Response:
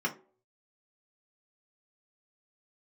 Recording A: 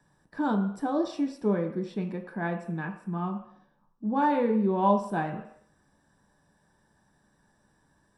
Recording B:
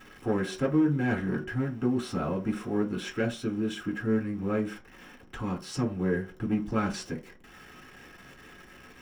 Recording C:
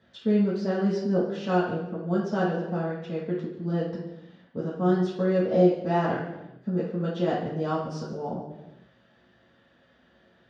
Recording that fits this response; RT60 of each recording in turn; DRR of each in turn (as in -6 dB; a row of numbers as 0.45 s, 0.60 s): B; no single decay rate, no single decay rate, no single decay rate; 2.5 dB, -1.0 dB, -7.5 dB